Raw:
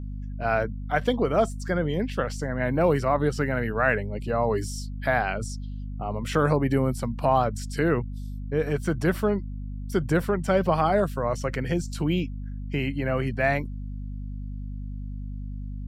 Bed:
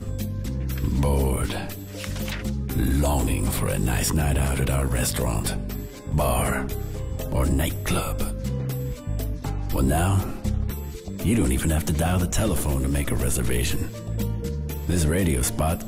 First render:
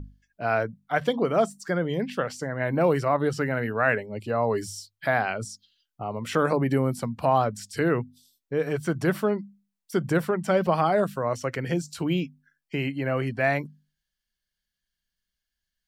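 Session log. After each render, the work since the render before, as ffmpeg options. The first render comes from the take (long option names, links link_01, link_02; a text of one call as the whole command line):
ffmpeg -i in.wav -af "bandreject=frequency=50:width_type=h:width=6,bandreject=frequency=100:width_type=h:width=6,bandreject=frequency=150:width_type=h:width=6,bandreject=frequency=200:width_type=h:width=6,bandreject=frequency=250:width_type=h:width=6" out.wav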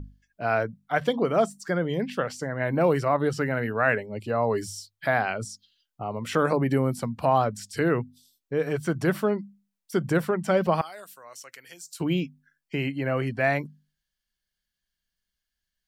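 ffmpeg -i in.wav -filter_complex "[0:a]asettb=1/sr,asplit=3[link_01][link_02][link_03];[link_01]atrim=end=10.814[link_04];[link_02]atrim=start=10.81:end=12,asetpts=PTS-STARTPTS,afade=type=in:duration=0.004:curve=qsin,afade=type=out:start_time=1.186:duration=0.004:curve=qsin,aderivative[link_05];[link_03]atrim=start=11.996[link_06];[link_04][link_05]acrossfade=duration=0.004:curve1=hsin:curve2=qsin[link_07];[link_07][link_06]acrossfade=duration=0.004:curve1=qsin:curve2=hsin" out.wav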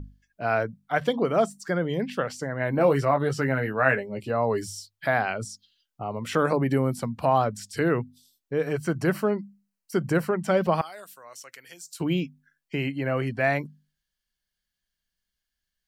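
ffmpeg -i in.wav -filter_complex "[0:a]asettb=1/sr,asplit=3[link_01][link_02][link_03];[link_01]atrim=end=2.774[link_04];[link_02]atrim=start=2.77:end=4.3,asetpts=PTS-STARTPTS,afade=type=in:duration=0.004:curve=qsin,afade=type=out:start_time=1.526:duration=0.004:curve=qsin,asplit=2[link_05][link_06];[link_06]adelay=15,volume=-6.5dB[link_07];[link_05][link_07]amix=inputs=2:normalize=0,atrim=end_sample=67473[link_08];[link_03]atrim=start=4.296[link_09];[link_04][link_08]acrossfade=duration=0.004:curve1=hsin:curve2=qsin[link_10];[link_10][link_09]acrossfade=duration=0.004:curve1=qsin:curve2=hsin,asettb=1/sr,asplit=3[link_11][link_12][link_13];[link_11]atrim=end=8.714[link_14];[link_12]atrim=start=8.71:end=10.4,asetpts=PTS-STARTPTS,afade=type=in:duration=0.004:curve=qsin,afade=type=out:start_time=1.686:duration=0.004:curve=qsin,asuperstop=centerf=3500:order=4:qfactor=6[link_15];[link_13]atrim=start=10.396[link_16];[link_14][link_15]acrossfade=duration=0.004:curve1=hsin:curve2=qsin[link_17];[link_17][link_16]acrossfade=duration=0.004:curve1=qsin:curve2=hsin" out.wav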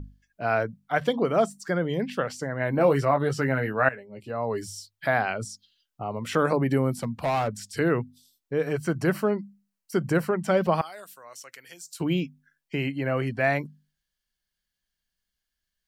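ffmpeg -i in.wav -filter_complex "[0:a]asplit=3[link_01][link_02][link_03];[link_01]afade=type=out:start_time=6.9:duration=0.02[link_04];[link_02]asoftclip=type=hard:threshold=-21dB,afade=type=in:start_time=6.9:duration=0.02,afade=type=out:start_time=7.47:duration=0.02[link_05];[link_03]afade=type=in:start_time=7.47:duration=0.02[link_06];[link_04][link_05][link_06]amix=inputs=3:normalize=0,asplit=2[link_07][link_08];[link_07]atrim=end=3.89,asetpts=PTS-STARTPTS,afade=type=out:start_time=3.886:duration=0.004:curve=hsin:silence=0.141254[link_09];[link_08]atrim=start=3.89,asetpts=PTS-STARTPTS,afade=type=in:duration=1.03:silence=0.141254[link_10];[link_09][link_10]concat=n=2:v=0:a=1" out.wav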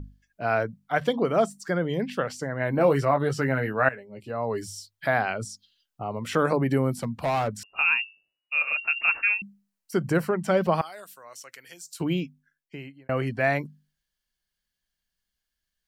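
ffmpeg -i in.wav -filter_complex "[0:a]asettb=1/sr,asplit=3[link_01][link_02][link_03];[link_01]atrim=end=7.634[link_04];[link_02]atrim=start=7.63:end=9.42,asetpts=PTS-STARTPTS,afade=type=in:duration=0.004:curve=qsin,afade=type=out:start_time=1.786:duration=0.004:curve=qsin,lowpass=frequency=2500:width_type=q:width=0.5098,lowpass=frequency=2500:width_type=q:width=0.6013,lowpass=frequency=2500:width_type=q:width=0.9,lowpass=frequency=2500:width_type=q:width=2.563,afreqshift=-2900[link_05];[link_03]atrim=start=9.416[link_06];[link_04][link_05]acrossfade=duration=0.004:curve1=hsin:curve2=qsin[link_07];[link_07][link_06]acrossfade=duration=0.004:curve1=qsin:curve2=hsin,asplit=2[link_08][link_09];[link_08]atrim=end=13.09,asetpts=PTS-STARTPTS,afade=type=out:start_time=12.01:duration=1.08[link_10];[link_09]atrim=start=13.09,asetpts=PTS-STARTPTS,afade=type=in:duration=0.004:curve=hsin[link_11];[link_10][link_11]concat=n=2:v=0:a=1" out.wav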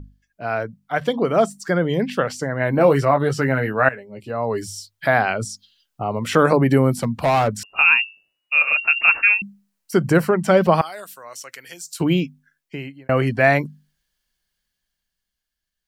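ffmpeg -i in.wav -af "dynaudnorm=framelen=150:gausssize=17:maxgain=11.5dB" out.wav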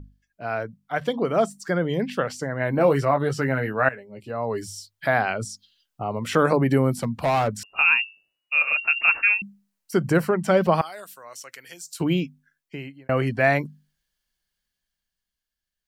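ffmpeg -i in.wav -af "volume=-4dB" out.wav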